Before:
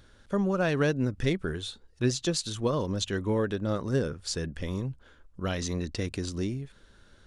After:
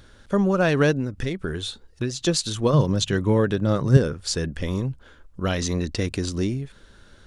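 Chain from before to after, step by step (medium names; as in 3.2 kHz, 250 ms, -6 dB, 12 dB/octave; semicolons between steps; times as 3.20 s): 0.97–2.21 s: compression 10:1, threshold -29 dBFS, peak gain reduction 10 dB; 2.73–3.97 s: peaking EQ 140 Hz +14.5 dB 0.34 oct; trim +6.5 dB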